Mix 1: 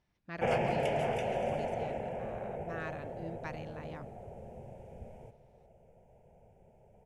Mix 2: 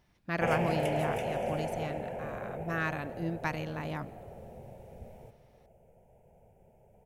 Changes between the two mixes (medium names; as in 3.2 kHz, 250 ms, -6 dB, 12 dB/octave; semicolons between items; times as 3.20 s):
speech +9.5 dB; master: remove low-pass 7.8 kHz 12 dB/octave